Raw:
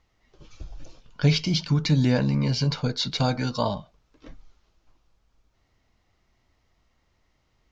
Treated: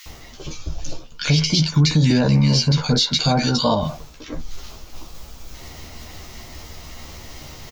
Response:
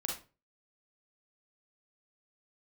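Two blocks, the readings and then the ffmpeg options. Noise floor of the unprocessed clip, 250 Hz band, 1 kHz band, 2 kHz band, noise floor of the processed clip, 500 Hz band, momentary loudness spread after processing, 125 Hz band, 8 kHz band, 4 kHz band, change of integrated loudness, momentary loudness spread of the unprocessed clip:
-70 dBFS, +6.0 dB, +7.0 dB, +6.0 dB, -41 dBFS, +5.5 dB, 20 LU, +6.0 dB, no reading, +9.0 dB, +6.5 dB, 6 LU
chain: -filter_complex "[0:a]aemphasis=mode=production:type=50kf,areverse,acompressor=mode=upward:threshold=0.0447:ratio=2.5,areverse,asplit=2[s0][s1];[s1]adelay=13,volume=0.562[s2];[s0][s2]amix=inputs=2:normalize=0,acrossover=split=1600[s3][s4];[s3]adelay=60[s5];[s5][s4]amix=inputs=2:normalize=0,alimiter=level_in=5.62:limit=0.891:release=50:level=0:latency=1,volume=0.447"

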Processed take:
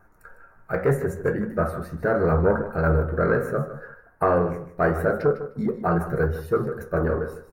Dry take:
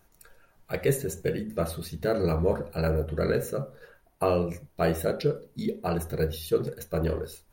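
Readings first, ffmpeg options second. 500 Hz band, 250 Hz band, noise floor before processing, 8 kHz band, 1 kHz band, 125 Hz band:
+4.5 dB, +4.5 dB, -64 dBFS, no reading, +8.0 dB, +4.5 dB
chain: -filter_complex "[0:a]aeval=exprs='0.282*(cos(1*acos(clip(val(0)/0.282,-1,1)))-cos(1*PI/2))+0.0355*(cos(5*acos(clip(val(0)/0.282,-1,1)))-cos(5*PI/2))':c=same,flanger=delay=9.2:depth=8.4:regen=64:speed=0.76:shape=sinusoidal,highshelf=f=2200:t=q:w=3:g=-14,asplit=2[s0][s1];[s1]aecho=0:1:153|306:0.251|0.0427[s2];[s0][s2]amix=inputs=2:normalize=0,volume=1.78"

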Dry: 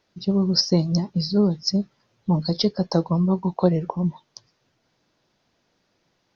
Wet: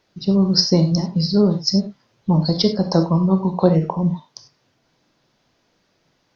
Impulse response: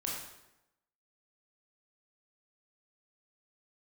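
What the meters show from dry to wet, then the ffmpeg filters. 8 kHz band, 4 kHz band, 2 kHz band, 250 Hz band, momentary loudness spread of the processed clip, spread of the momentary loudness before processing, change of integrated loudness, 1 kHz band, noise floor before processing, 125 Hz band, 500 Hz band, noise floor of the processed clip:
no reading, +4.5 dB, +4.5 dB, +4.0 dB, 7 LU, 7 LU, +4.5 dB, +4.5 dB, -70 dBFS, +4.5 dB, +4.5 dB, -66 dBFS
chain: -filter_complex "[0:a]asplit=2[s0][s1];[1:a]atrim=start_sample=2205,afade=t=out:st=0.15:d=0.01,atrim=end_sample=7056,asetrate=42777,aresample=44100[s2];[s1][s2]afir=irnorm=-1:irlink=0,volume=0.708[s3];[s0][s3]amix=inputs=2:normalize=0"

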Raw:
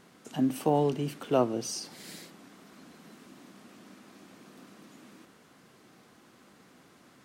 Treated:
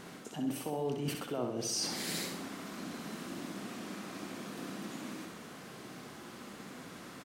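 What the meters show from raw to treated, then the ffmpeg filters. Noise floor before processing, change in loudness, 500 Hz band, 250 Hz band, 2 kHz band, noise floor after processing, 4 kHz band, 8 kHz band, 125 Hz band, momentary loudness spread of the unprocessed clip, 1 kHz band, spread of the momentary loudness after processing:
-59 dBFS, -9.5 dB, -8.0 dB, -5.0 dB, +5.0 dB, -50 dBFS, +4.0 dB, +3.0 dB, -5.5 dB, 18 LU, -7.5 dB, 14 LU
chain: -af "alimiter=limit=0.0841:level=0:latency=1:release=334,areverse,acompressor=threshold=0.00891:ratio=12,areverse,aecho=1:1:64|128|192|256|320|384:0.531|0.255|0.122|0.0587|0.0282|0.0135,volume=2.66"

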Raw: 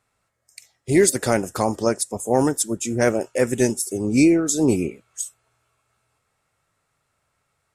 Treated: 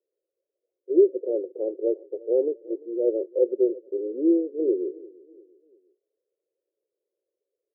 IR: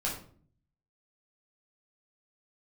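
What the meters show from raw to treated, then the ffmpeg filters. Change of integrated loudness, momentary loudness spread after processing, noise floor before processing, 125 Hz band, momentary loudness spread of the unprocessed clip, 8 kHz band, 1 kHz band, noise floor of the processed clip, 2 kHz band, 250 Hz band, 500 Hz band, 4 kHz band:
-4.5 dB, 11 LU, -73 dBFS, under -40 dB, 13 LU, under -40 dB, under -25 dB, under -85 dBFS, under -40 dB, -6.5 dB, -1.0 dB, under -40 dB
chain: -af "asuperpass=centerf=430:order=8:qfactor=2,aecho=1:1:346|692|1038:0.0794|0.0342|0.0147"

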